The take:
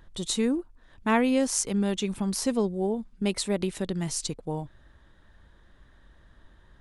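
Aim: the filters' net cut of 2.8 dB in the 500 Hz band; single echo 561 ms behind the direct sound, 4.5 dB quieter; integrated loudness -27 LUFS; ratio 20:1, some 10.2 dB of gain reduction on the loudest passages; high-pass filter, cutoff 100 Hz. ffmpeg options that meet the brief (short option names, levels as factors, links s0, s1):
-af "highpass=100,equalizer=f=500:t=o:g=-3.5,acompressor=threshold=0.0355:ratio=20,aecho=1:1:561:0.596,volume=2.11"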